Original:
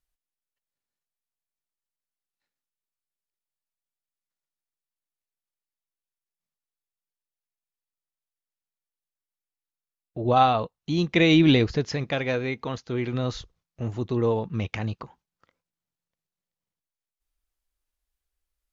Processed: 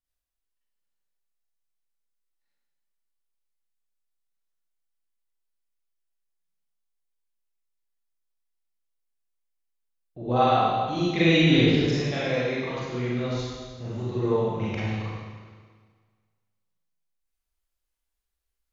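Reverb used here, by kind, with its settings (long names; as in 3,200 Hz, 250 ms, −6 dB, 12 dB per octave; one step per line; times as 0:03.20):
four-comb reverb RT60 1.6 s, combs from 33 ms, DRR −9 dB
level −9 dB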